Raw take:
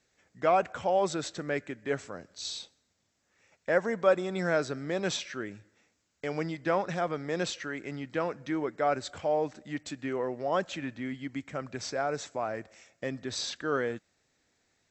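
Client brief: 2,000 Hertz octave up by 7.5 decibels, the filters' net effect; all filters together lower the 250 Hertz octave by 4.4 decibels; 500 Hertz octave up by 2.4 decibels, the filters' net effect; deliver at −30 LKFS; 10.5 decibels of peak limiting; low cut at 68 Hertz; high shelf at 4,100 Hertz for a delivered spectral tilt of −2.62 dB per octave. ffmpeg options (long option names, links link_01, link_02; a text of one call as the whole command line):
ffmpeg -i in.wav -af "highpass=68,equalizer=frequency=250:width_type=o:gain=-8.5,equalizer=frequency=500:width_type=o:gain=4,equalizer=frequency=2000:width_type=o:gain=8.5,highshelf=frequency=4100:gain=6,volume=1.5dB,alimiter=limit=-17dB:level=0:latency=1" out.wav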